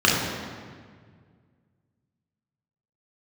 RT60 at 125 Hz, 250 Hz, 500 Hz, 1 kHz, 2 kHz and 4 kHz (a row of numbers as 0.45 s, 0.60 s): 2.7 s, 2.3 s, 1.9 s, 1.7 s, 1.6 s, 1.3 s